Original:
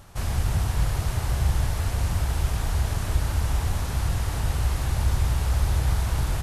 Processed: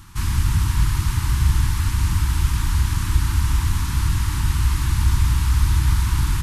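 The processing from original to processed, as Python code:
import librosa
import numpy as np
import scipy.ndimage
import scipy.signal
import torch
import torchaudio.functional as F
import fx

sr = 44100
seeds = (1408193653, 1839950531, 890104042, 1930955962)

y = scipy.signal.sosfilt(scipy.signal.ellip(3, 1.0, 60, [330.0, 940.0], 'bandstop', fs=sr, output='sos'), x)
y = y * librosa.db_to_amplitude(5.5)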